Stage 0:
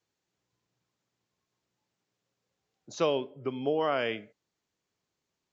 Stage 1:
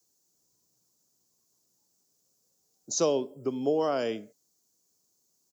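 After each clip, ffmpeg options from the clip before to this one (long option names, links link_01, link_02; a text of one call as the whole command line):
ffmpeg -i in.wav -filter_complex "[0:a]firequalizer=gain_entry='entry(120,0);entry(220,6);entry(2100,-8);entry(3800,3)':delay=0.05:min_phase=1,acrossover=split=340[link_01][link_02];[link_02]aexciter=amount=7.7:drive=4.1:freq=5100[link_03];[link_01][link_03]amix=inputs=2:normalize=0,volume=-2dB" out.wav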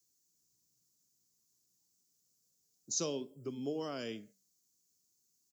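ffmpeg -i in.wav -af "equalizer=frequency=710:width=0.64:gain=-12.5,flanger=delay=1.6:depth=6.3:regen=-86:speed=0.57:shape=triangular,volume=1dB" out.wav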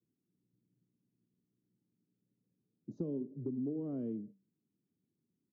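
ffmpeg -i in.wav -af "asuperpass=centerf=200:order=4:qfactor=0.89,acompressor=threshold=-49dB:ratio=3,volume=12dB" out.wav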